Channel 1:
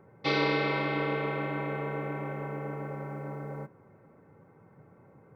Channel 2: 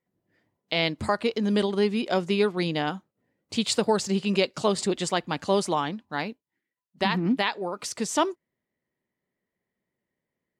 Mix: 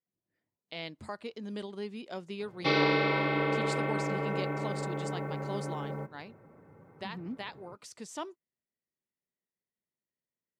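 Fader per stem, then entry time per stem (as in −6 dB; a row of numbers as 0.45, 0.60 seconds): +1.0, −15.5 decibels; 2.40, 0.00 seconds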